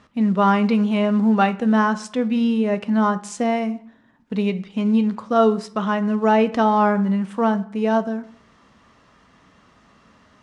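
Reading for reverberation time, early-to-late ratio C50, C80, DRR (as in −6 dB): 0.60 s, 17.0 dB, 20.5 dB, 11.0 dB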